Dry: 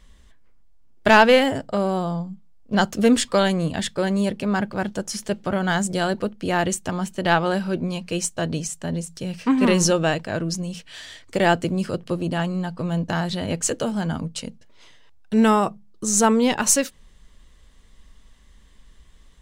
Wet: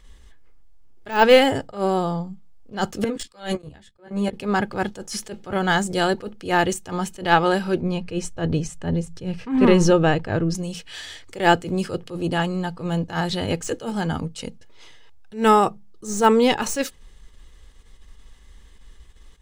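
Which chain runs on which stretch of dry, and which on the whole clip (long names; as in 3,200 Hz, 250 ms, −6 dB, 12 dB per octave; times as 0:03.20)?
0:03.04–0:04.33: output level in coarse steps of 22 dB + double-tracking delay 14 ms −4.5 dB + multiband upward and downward expander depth 100%
0:07.82–0:10.55: low-pass filter 2,100 Hz 6 dB per octave + low-shelf EQ 140 Hz +9.5 dB
whole clip: de-essing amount 50%; comb filter 2.4 ms, depth 36%; level that may rise only so fast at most 180 dB per second; level +2.5 dB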